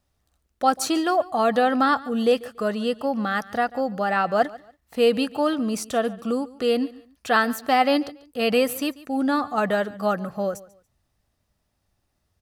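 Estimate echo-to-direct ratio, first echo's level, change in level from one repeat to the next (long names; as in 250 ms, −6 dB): −19.5 dB, −20.0 dB, −11.5 dB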